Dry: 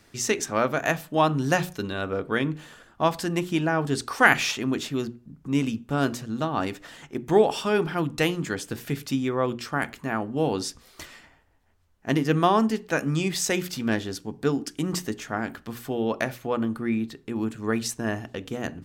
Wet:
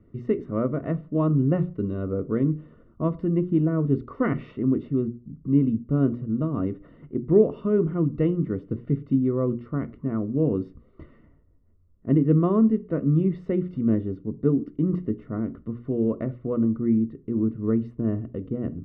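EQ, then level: boxcar filter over 54 samples; distance through air 470 m; +6.5 dB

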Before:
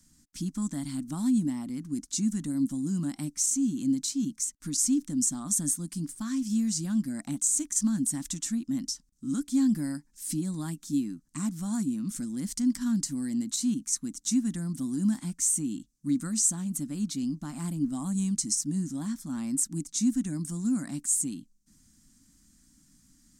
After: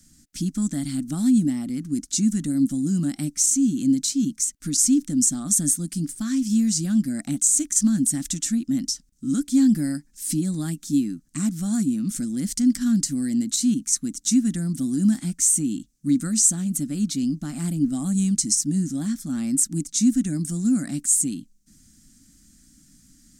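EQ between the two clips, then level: peaking EQ 980 Hz -14.5 dB 0.4 oct; +7.0 dB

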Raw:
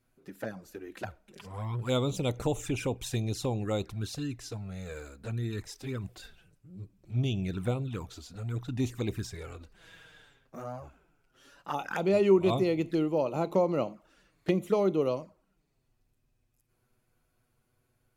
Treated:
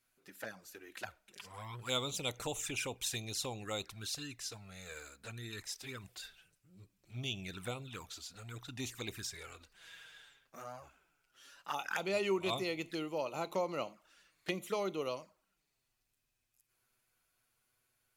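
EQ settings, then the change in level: tilt shelf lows -9 dB, about 830 Hz; -6.0 dB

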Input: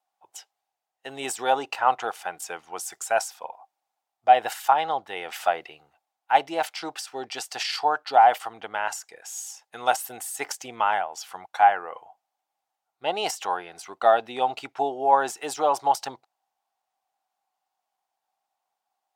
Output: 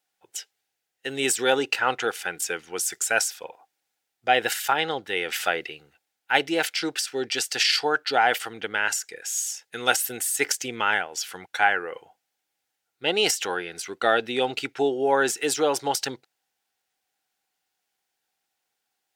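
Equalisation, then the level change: high-order bell 850 Hz -14.5 dB 1.2 oct; +8.0 dB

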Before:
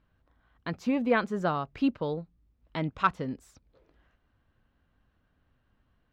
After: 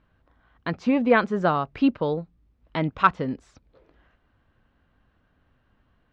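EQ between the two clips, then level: distance through air 120 m; bass shelf 220 Hz -3.5 dB; +7.5 dB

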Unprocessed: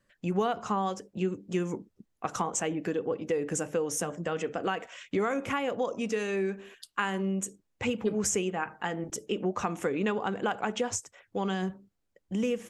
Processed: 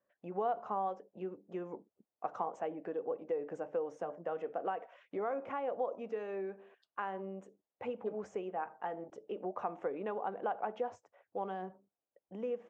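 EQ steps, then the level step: band-pass filter 680 Hz, Q 1.8; distance through air 110 m; -1.5 dB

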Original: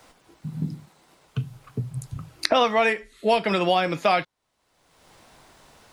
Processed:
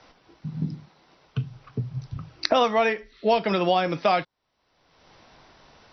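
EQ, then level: dynamic bell 2.3 kHz, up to -4 dB, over -34 dBFS, Q 0.99; brick-wall FIR low-pass 6 kHz; 0.0 dB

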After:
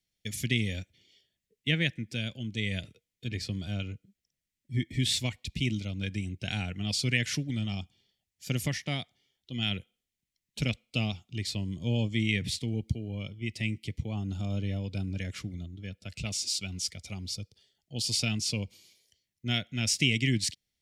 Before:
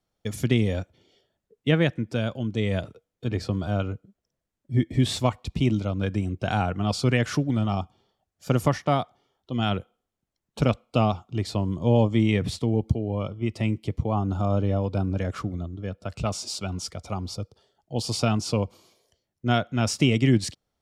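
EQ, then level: FFT filter 200 Hz 0 dB, 1.2 kHz -15 dB, 2 kHz +9 dB; -7.0 dB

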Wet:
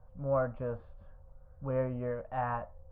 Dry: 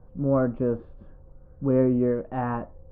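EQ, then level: FFT filter 100 Hz 0 dB, 360 Hz -17 dB, 580 Hz +2 dB; -5.0 dB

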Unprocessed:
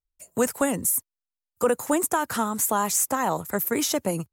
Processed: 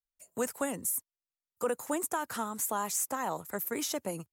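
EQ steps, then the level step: bass shelf 160 Hz -7.5 dB; -8.5 dB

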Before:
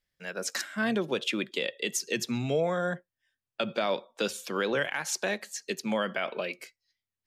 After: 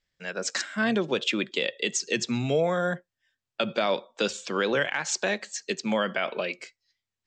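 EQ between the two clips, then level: elliptic low-pass 7.8 kHz, stop band 40 dB; +4.0 dB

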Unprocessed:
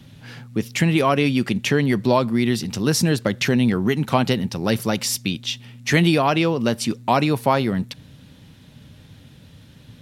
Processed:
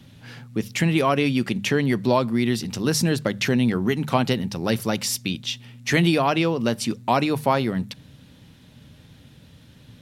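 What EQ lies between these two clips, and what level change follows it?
hum notches 50/100/150/200 Hz; -2.0 dB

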